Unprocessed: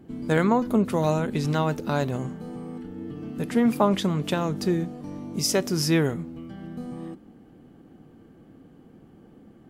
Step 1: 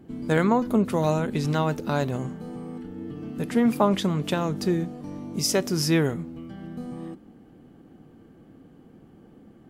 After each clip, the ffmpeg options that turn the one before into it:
ffmpeg -i in.wav -af anull out.wav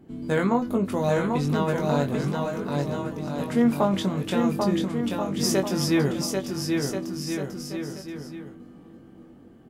ffmpeg -i in.wav -filter_complex "[0:a]asplit=2[link_01][link_02];[link_02]adelay=21,volume=-5dB[link_03];[link_01][link_03]amix=inputs=2:normalize=0,asplit=2[link_04][link_05];[link_05]aecho=0:1:790|1382|1827|2160|2410:0.631|0.398|0.251|0.158|0.1[link_06];[link_04][link_06]amix=inputs=2:normalize=0,volume=-3dB" out.wav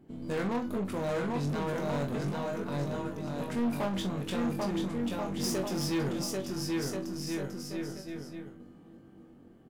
ffmpeg -i in.wav -filter_complex "[0:a]asoftclip=type=tanh:threshold=-23dB,aeval=exprs='0.0708*(cos(1*acos(clip(val(0)/0.0708,-1,1)))-cos(1*PI/2))+0.00398*(cos(6*acos(clip(val(0)/0.0708,-1,1)))-cos(6*PI/2))+0.00178*(cos(7*acos(clip(val(0)/0.0708,-1,1)))-cos(7*PI/2))':channel_layout=same,asplit=2[link_01][link_02];[link_02]adelay=42,volume=-10.5dB[link_03];[link_01][link_03]amix=inputs=2:normalize=0,volume=-4.5dB" out.wav

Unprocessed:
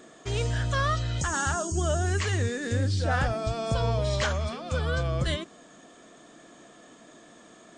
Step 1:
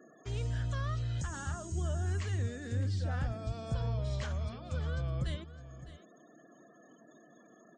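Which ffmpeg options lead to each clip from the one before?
ffmpeg -i in.wav -filter_complex "[0:a]afftfilt=real='re*gte(hypot(re,im),0.00398)':imag='im*gte(hypot(re,im),0.00398)':win_size=1024:overlap=0.75,acrossover=split=230[link_01][link_02];[link_02]acompressor=threshold=-53dB:ratio=1.5[link_03];[link_01][link_03]amix=inputs=2:normalize=0,aecho=1:1:608:0.178,volume=-5.5dB" out.wav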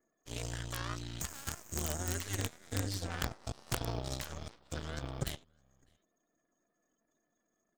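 ffmpeg -i in.wav -af "aemphasis=mode=production:type=75kf,aeval=exprs='(mod(16.8*val(0)+1,2)-1)/16.8':channel_layout=same,aeval=exprs='0.0596*(cos(1*acos(clip(val(0)/0.0596,-1,1)))-cos(1*PI/2))+0.0211*(cos(3*acos(clip(val(0)/0.0596,-1,1)))-cos(3*PI/2))+0.00211*(cos(6*acos(clip(val(0)/0.0596,-1,1)))-cos(6*PI/2))':channel_layout=same,volume=1dB" out.wav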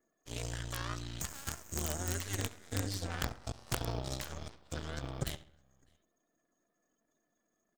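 ffmpeg -i in.wav -filter_complex "[0:a]asplit=2[link_01][link_02];[link_02]adelay=67,lowpass=frequency=4500:poles=1,volume=-17.5dB,asplit=2[link_03][link_04];[link_04]adelay=67,lowpass=frequency=4500:poles=1,volume=0.51,asplit=2[link_05][link_06];[link_06]adelay=67,lowpass=frequency=4500:poles=1,volume=0.51,asplit=2[link_07][link_08];[link_08]adelay=67,lowpass=frequency=4500:poles=1,volume=0.51[link_09];[link_01][link_03][link_05][link_07][link_09]amix=inputs=5:normalize=0" out.wav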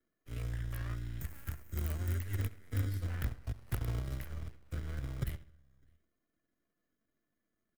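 ffmpeg -i in.wav -filter_complex "[0:a]firequalizer=gain_entry='entry(100,0);entry(160,-7);entry(750,-14);entry(2000,-9);entry(3500,-22);entry(7100,-25);entry(11000,-9)':delay=0.05:min_phase=1,acrossover=split=120|960|4800[link_01][link_02][link_03][link_04];[link_02]acrusher=samples=25:mix=1:aa=0.000001[link_05];[link_01][link_05][link_03][link_04]amix=inputs=4:normalize=0,volume=5dB" out.wav

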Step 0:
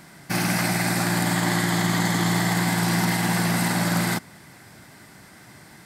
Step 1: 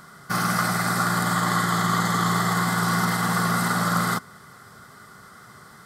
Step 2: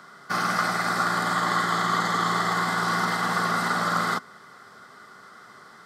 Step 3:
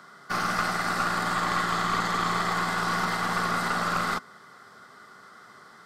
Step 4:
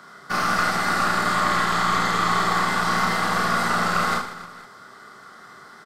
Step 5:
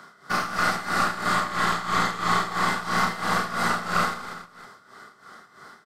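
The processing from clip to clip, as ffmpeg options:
ffmpeg -i in.wav -af "superequalizer=6b=0.501:7b=1.58:10b=3.98:12b=0.398,volume=-2dB" out.wav
ffmpeg -i in.wav -filter_complex "[0:a]acrossover=split=220 6400:gain=0.158 1 0.224[link_01][link_02][link_03];[link_01][link_02][link_03]amix=inputs=3:normalize=0" out.wav
ffmpeg -i in.wav -af "aeval=exprs='(tanh(5.62*val(0)+0.5)-tanh(0.5))/5.62':channel_layout=same" out.wav
ffmpeg -i in.wav -af "aecho=1:1:30|78|154.8|277.7|474.3:0.631|0.398|0.251|0.158|0.1,volume=3dB" out.wav
ffmpeg -i in.wav -af "tremolo=f=3:d=0.76" out.wav

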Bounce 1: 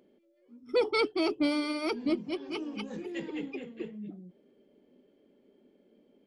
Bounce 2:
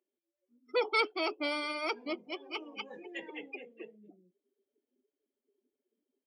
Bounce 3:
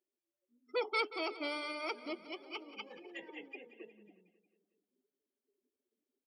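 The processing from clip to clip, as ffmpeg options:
ffmpeg -i in.wav -af "afftdn=noise_reduction=25:noise_floor=-48,highpass=680,equalizer=frequency=4300:width_type=o:width=0.35:gain=-5.5,volume=2.5dB" out.wav
ffmpeg -i in.wav -af "aecho=1:1:181|362|543|724|905:0.178|0.096|0.0519|0.028|0.0151,volume=-5dB" out.wav

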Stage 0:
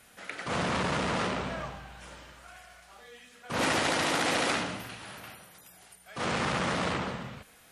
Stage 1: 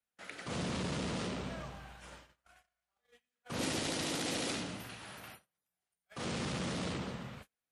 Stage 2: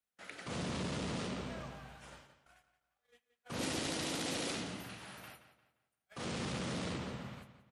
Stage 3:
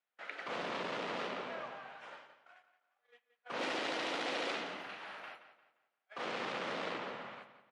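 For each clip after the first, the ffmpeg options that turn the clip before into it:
ffmpeg -i in.wav -filter_complex "[0:a]agate=range=-33dB:threshold=-47dB:ratio=16:detection=peak,acrossover=split=480|3000[link_01][link_02][link_03];[link_02]acompressor=threshold=-44dB:ratio=3[link_04];[link_01][link_04][link_03]amix=inputs=3:normalize=0,volume=-4dB" out.wav
ffmpeg -i in.wav -filter_complex "[0:a]asplit=2[link_01][link_02];[link_02]adelay=175,lowpass=frequency=5000:poles=1,volume=-11.5dB,asplit=2[link_03][link_04];[link_04]adelay=175,lowpass=frequency=5000:poles=1,volume=0.36,asplit=2[link_05][link_06];[link_06]adelay=175,lowpass=frequency=5000:poles=1,volume=0.36,asplit=2[link_07][link_08];[link_08]adelay=175,lowpass=frequency=5000:poles=1,volume=0.36[link_09];[link_01][link_03][link_05][link_07][link_09]amix=inputs=5:normalize=0,volume=-2dB" out.wav
ffmpeg -i in.wav -af "highpass=510,lowpass=2700,volume=6dB" out.wav

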